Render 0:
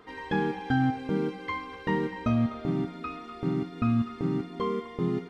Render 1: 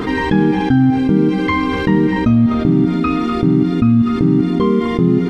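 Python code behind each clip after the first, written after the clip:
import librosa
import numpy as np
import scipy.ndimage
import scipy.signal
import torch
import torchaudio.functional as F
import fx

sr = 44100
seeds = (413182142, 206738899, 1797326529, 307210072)

y = fx.low_shelf_res(x, sr, hz=410.0, db=7.5, q=1.5)
y = fx.env_flatten(y, sr, amount_pct=70)
y = F.gain(torch.from_numpy(y), 3.5).numpy()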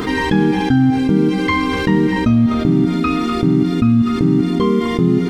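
y = fx.high_shelf(x, sr, hz=4100.0, db=10.5)
y = F.gain(torch.from_numpy(y), -1.0).numpy()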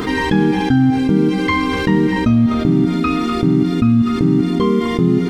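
y = x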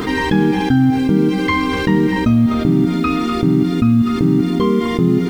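y = fx.quant_dither(x, sr, seeds[0], bits=8, dither='none')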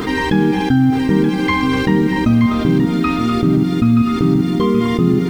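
y = x + 10.0 ** (-9.5 / 20.0) * np.pad(x, (int(926 * sr / 1000.0), 0))[:len(x)]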